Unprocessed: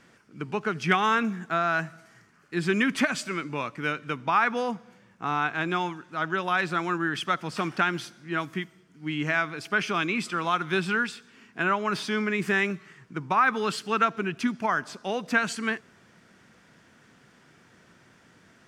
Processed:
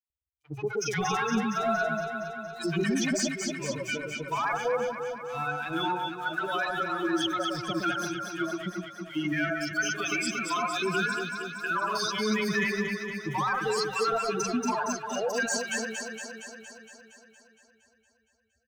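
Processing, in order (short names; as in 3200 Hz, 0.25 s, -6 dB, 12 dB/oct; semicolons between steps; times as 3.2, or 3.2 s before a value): per-bin expansion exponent 3; in parallel at -7 dB: soft clip -23.5 dBFS, distortion -14 dB; on the sum: bell 6200 Hz +14.5 dB 0.61 oct; sample leveller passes 1; three bands offset in time highs, mids, lows 40/100 ms, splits 920/5600 Hz; limiter -28 dBFS, peak gain reduction 16.5 dB; on a send: echo with dull and thin repeats by turns 0.116 s, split 1700 Hz, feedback 81%, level -3 dB; on the sum: gain +5.5 dB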